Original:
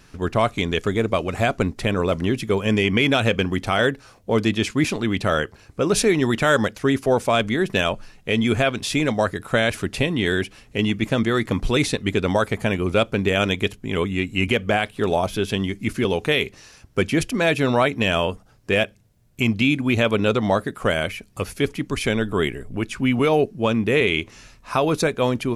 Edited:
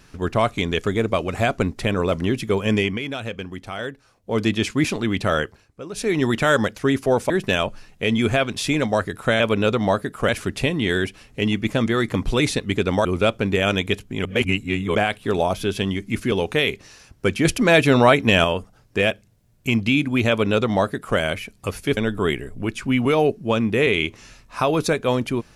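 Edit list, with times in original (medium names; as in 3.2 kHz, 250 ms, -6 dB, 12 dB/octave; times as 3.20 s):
2.79–4.43 s: dip -10.5 dB, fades 0.21 s
5.44–6.20 s: dip -14 dB, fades 0.25 s
7.30–7.56 s: delete
12.42–12.78 s: delete
13.98–14.68 s: reverse
17.18–18.17 s: gain +4.5 dB
20.02–20.91 s: copy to 9.66 s
21.70–22.11 s: delete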